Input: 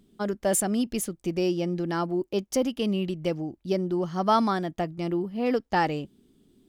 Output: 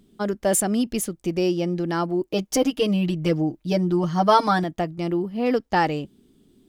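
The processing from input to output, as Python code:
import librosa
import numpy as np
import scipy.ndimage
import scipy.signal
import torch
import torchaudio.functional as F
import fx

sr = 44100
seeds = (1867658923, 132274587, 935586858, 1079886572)

y = fx.comb(x, sr, ms=6.5, depth=0.99, at=(2.29, 4.64))
y = y * librosa.db_to_amplitude(3.5)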